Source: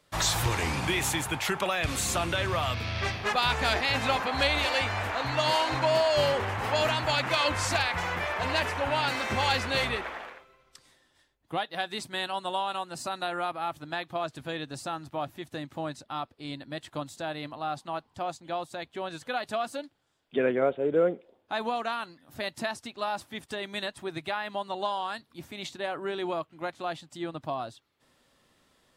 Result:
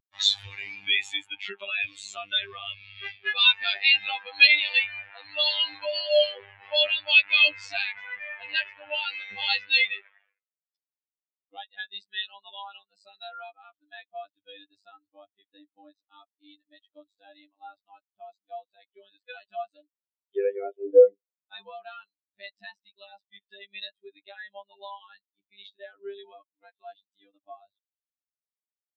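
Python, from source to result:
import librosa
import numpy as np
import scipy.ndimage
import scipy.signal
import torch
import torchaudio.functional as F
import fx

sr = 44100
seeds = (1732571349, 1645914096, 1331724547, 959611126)

y = fx.weighting(x, sr, curve='D')
y = fx.robotise(y, sr, hz=99.5)
y = fx.spectral_expand(y, sr, expansion=2.5)
y = y * 10.0 ** (-3.5 / 20.0)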